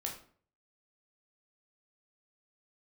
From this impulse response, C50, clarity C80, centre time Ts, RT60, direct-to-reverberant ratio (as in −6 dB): 7.5 dB, 12.0 dB, 24 ms, 0.50 s, −0.5 dB